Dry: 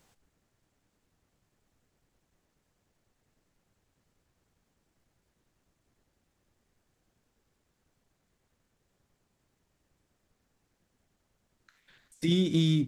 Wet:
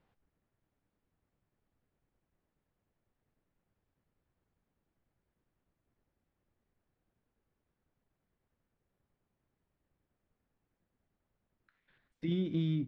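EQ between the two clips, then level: distance through air 370 m; -6.5 dB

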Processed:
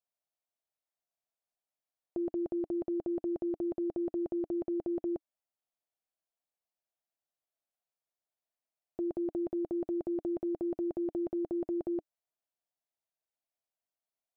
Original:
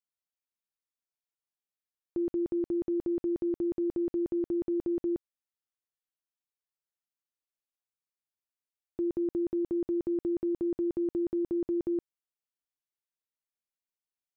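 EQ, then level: dynamic bell 310 Hz, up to -4 dB, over -48 dBFS, Q 7.5; peaking EQ 670 Hz +15 dB 0.72 oct; -4.5 dB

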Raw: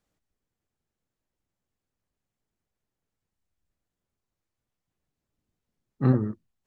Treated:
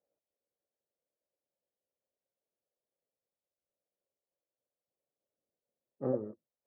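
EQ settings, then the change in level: band-pass filter 550 Hz, Q 4.8; distance through air 490 m; +5.5 dB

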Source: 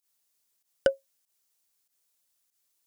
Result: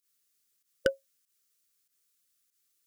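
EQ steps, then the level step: brick-wall FIR band-stop 550–1100 Hz; 0.0 dB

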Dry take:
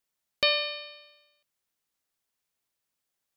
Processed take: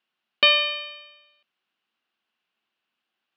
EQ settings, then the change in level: cabinet simulation 150–3700 Hz, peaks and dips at 220 Hz +10 dB, 350 Hz +7 dB, 750 Hz +6 dB, 1.1 kHz +6 dB, 1.5 kHz +7 dB, 2.8 kHz +9 dB; treble shelf 2.4 kHz +8.5 dB; 0.0 dB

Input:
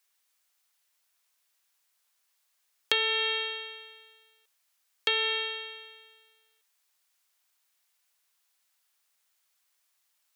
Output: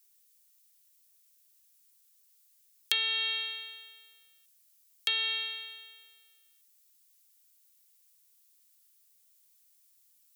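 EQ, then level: pre-emphasis filter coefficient 0.97; +5.5 dB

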